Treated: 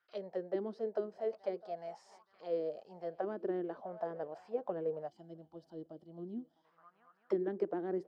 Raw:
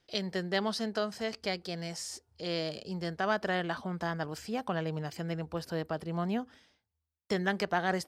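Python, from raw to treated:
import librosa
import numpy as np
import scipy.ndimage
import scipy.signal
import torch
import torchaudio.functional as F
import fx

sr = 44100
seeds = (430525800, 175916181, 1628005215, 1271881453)

y = fx.echo_swing(x, sr, ms=874, ratio=3, feedback_pct=39, wet_db=-23.0)
y = fx.auto_wah(y, sr, base_hz=330.0, top_hz=1400.0, q=5.5, full_db=-27.0, direction='down')
y = fx.spec_box(y, sr, start_s=5.08, length_s=1.57, low_hz=370.0, high_hz=2900.0, gain_db=-16)
y = y * 10.0 ** (5.5 / 20.0)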